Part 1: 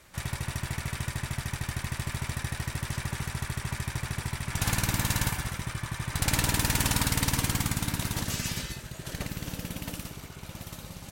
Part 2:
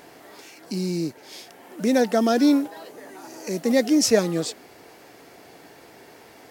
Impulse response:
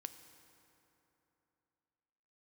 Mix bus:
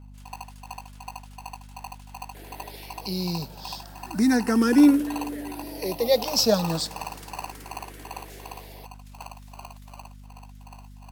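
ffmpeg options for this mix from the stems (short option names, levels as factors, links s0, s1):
-filter_complex "[0:a]acrossover=split=1600[s0][s1];[s0]aeval=exprs='val(0)*(1-1/2+1/2*cos(2*PI*2.7*n/s))':c=same[s2];[s1]aeval=exprs='val(0)*(1-1/2-1/2*cos(2*PI*2.7*n/s))':c=same[s3];[s2][s3]amix=inputs=2:normalize=0,lowshelf=f=360:g=12,aeval=exprs='val(0)*sgn(sin(2*PI*880*n/s))':c=same,volume=0.168[s4];[1:a]aexciter=amount=1.3:drive=4:freq=3700,asplit=2[s5][s6];[s6]afreqshift=0.34[s7];[s5][s7]amix=inputs=2:normalize=1,adelay=2350,volume=0.944,asplit=2[s8][s9];[s9]volume=0.596[s10];[2:a]atrim=start_sample=2205[s11];[s10][s11]afir=irnorm=-1:irlink=0[s12];[s4][s8][s12]amix=inputs=3:normalize=0,aeval=exprs='val(0)+0.00631*(sin(2*PI*50*n/s)+sin(2*PI*2*50*n/s)/2+sin(2*PI*3*50*n/s)/3+sin(2*PI*4*50*n/s)/4+sin(2*PI*5*50*n/s)/5)':c=same"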